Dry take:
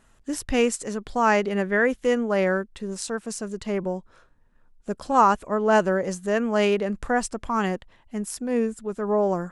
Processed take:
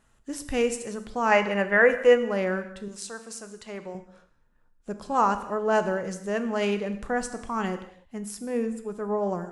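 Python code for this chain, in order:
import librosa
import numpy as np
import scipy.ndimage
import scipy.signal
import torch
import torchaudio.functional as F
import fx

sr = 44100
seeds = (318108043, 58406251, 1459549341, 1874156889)

y = fx.spec_box(x, sr, start_s=1.32, length_s=0.86, low_hz=470.0, high_hz=3000.0, gain_db=8)
y = fx.low_shelf(y, sr, hz=420.0, db=-12.0, at=(2.88, 3.95))
y = fx.rev_gated(y, sr, seeds[0], gate_ms=310, shape='falling', drr_db=8.5)
y = y * librosa.db_to_amplitude(-5.0)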